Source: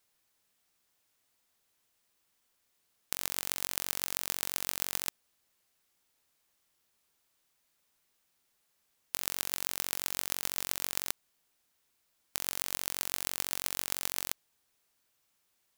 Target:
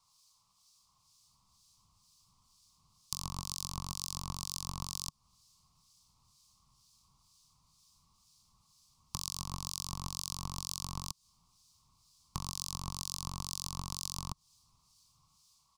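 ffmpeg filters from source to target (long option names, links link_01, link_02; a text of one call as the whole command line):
ffmpeg -i in.wav -filter_complex "[0:a]acrossover=split=320[link_01][link_02];[link_01]dynaudnorm=framelen=760:gausssize=3:maxgain=14dB[link_03];[link_03][link_02]amix=inputs=2:normalize=0,asoftclip=type=tanh:threshold=-11dB,firequalizer=gain_entry='entry(150,0);entry(290,-18);entry(520,-20);entry(1100,10);entry(1600,-28);entry(2300,-12);entry(4700,7);entry(16000,-16)':delay=0.05:min_phase=1,acompressor=threshold=-42dB:ratio=6,acrossover=split=2400[link_04][link_05];[link_04]aeval=exprs='val(0)*(1-0.7/2+0.7/2*cos(2*PI*2.1*n/s))':channel_layout=same[link_06];[link_05]aeval=exprs='val(0)*(1-0.7/2-0.7/2*cos(2*PI*2.1*n/s))':channel_layout=same[link_07];[link_06][link_07]amix=inputs=2:normalize=0,volume=11dB" out.wav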